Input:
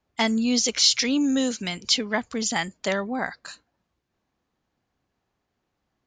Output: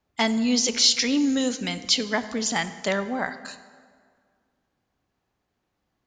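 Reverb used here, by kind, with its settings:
dense smooth reverb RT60 1.9 s, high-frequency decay 0.65×, DRR 11.5 dB

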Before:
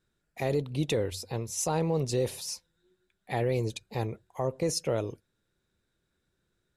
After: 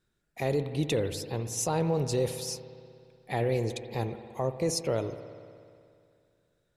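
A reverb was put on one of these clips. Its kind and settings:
spring reverb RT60 2.4 s, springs 60 ms, chirp 30 ms, DRR 10 dB

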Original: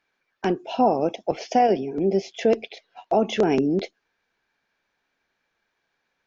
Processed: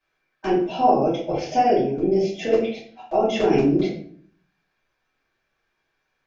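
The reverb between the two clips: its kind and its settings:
rectangular room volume 60 cubic metres, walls mixed, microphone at 2.6 metres
level −10.5 dB

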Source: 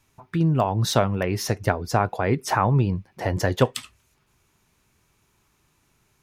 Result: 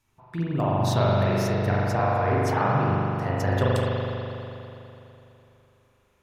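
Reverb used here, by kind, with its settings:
spring reverb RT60 3.1 s, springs 41 ms, chirp 70 ms, DRR −7 dB
level −8.5 dB

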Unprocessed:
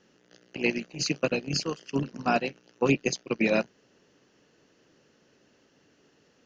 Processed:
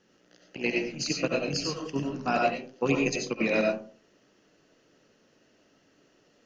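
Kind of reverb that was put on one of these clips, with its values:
comb and all-pass reverb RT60 0.42 s, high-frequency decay 0.4×, pre-delay 50 ms, DRR 0 dB
level −3 dB

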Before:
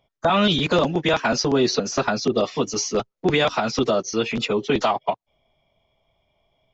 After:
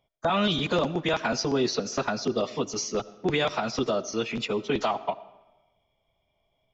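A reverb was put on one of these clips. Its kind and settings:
comb and all-pass reverb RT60 1.1 s, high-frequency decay 0.8×, pre-delay 40 ms, DRR 17.5 dB
level −6 dB

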